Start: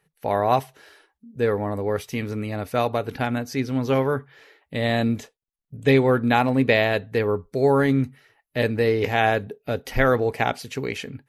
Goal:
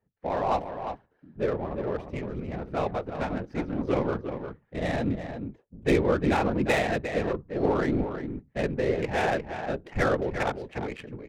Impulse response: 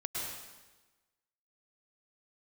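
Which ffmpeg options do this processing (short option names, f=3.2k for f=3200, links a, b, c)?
-af "afftfilt=real='hypot(re,im)*cos(2*PI*random(0))':imag='hypot(re,im)*sin(2*PI*random(1))':win_size=512:overlap=0.75,aecho=1:1:354:0.398,adynamicsmooth=sensitivity=4:basefreq=1.1k"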